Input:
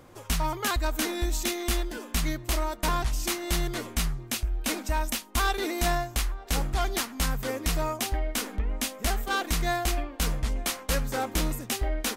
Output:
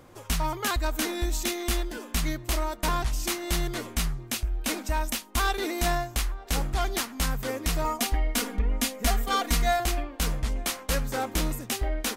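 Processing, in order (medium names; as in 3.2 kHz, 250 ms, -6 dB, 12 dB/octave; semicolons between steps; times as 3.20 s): 7.84–9.80 s: comb 4.2 ms, depth 82%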